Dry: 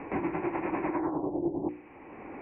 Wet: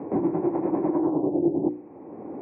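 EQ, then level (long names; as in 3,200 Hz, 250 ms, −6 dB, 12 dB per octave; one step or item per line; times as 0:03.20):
flat-topped band-pass 280 Hz, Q 0.52
+8.0 dB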